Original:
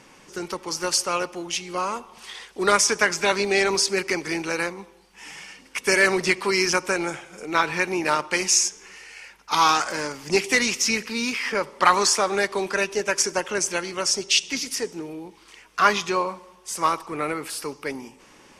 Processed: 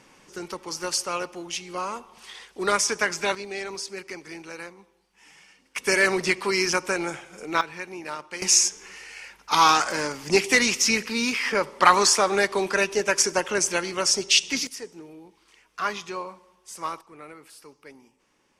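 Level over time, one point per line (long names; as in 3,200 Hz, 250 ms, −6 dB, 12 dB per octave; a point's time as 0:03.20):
−4 dB
from 0:03.35 −12.5 dB
from 0:05.76 −2 dB
from 0:07.61 −12 dB
from 0:08.42 +1 dB
from 0:14.67 −9.5 dB
from 0:17.01 −16.5 dB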